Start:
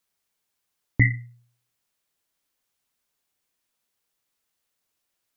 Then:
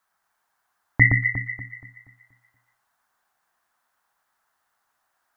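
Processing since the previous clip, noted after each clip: band shelf 1100 Hz +15 dB; on a send: echo with dull and thin repeats by turns 0.119 s, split 1800 Hz, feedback 62%, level -2 dB; on the sum: gain -1 dB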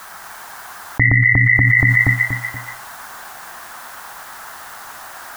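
fast leveller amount 100%; gain -1 dB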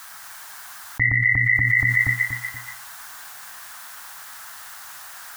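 passive tone stack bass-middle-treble 5-5-5; gain +5 dB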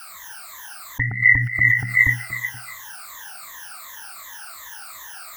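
moving spectral ripple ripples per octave 1.1, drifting -2.7 Hz, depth 21 dB; gain -3.5 dB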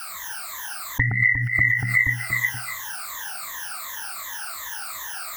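compressor 8:1, threshold -21 dBFS, peak gain reduction 13 dB; gain +5 dB

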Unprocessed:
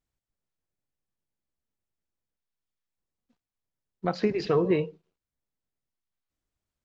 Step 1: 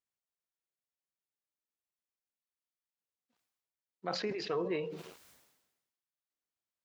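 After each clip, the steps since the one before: HPF 530 Hz 6 dB/oct; sustainer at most 52 dB/s; gain -7 dB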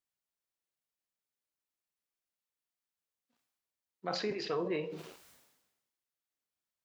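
Schroeder reverb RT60 0.31 s, combs from 26 ms, DRR 10 dB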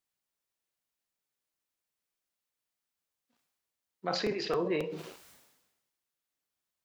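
crackling interface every 0.27 s, samples 256, repeat, from 0.48; gain +3.5 dB

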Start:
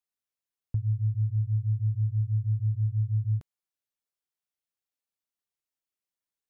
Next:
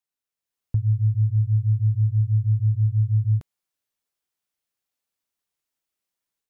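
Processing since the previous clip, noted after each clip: AGC gain up to 6.5 dB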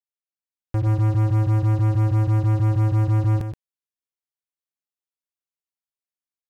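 sample leveller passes 5; echo 0.124 s -8 dB; gain -4.5 dB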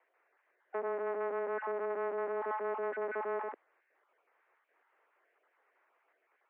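random spectral dropouts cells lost 22%; power-law curve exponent 0.5; mistuned SSB +98 Hz 280–2000 Hz; gain -7 dB

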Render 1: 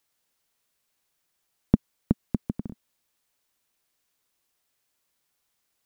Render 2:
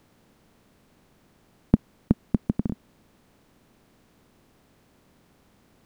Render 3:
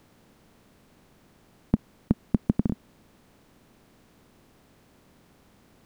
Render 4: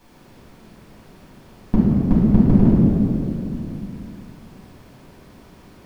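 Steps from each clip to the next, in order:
per-bin compression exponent 0.6
limiter -8.5 dBFS, peak gain reduction 6.5 dB; gain +2 dB
reverb RT60 2.8 s, pre-delay 4 ms, DRR -10.5 dB; gain -2 dB

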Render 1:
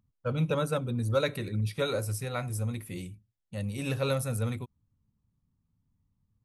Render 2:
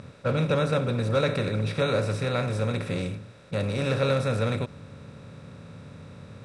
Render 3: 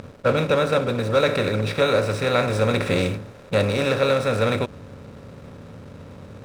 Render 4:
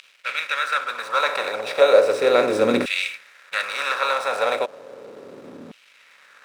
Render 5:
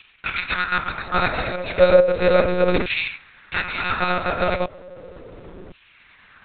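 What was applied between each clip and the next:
per-bin compression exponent 0.4; Bessel low-pass 5400 Hz, order 8
bell 140 Hz -9 dB 1.2 oct; vocal rider 0.5 s; backlash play -44.5 dBFS; gain +8 dB
LFO high-pass saw down 0.35 Hz 250–2800 Hz
monotone LPC vocoder at 8 kHz 180 Hz; gain +1 dB

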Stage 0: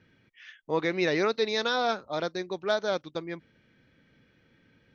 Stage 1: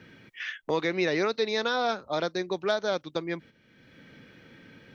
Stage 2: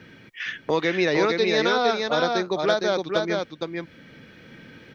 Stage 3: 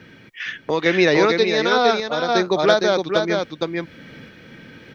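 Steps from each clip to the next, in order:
gate -52 dBFS, range -9 dB; three-band squash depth 70%
echo 0.461 s -3.5 dB; gain +4.5 dB
random-step tremolo; gain +6.5 dB

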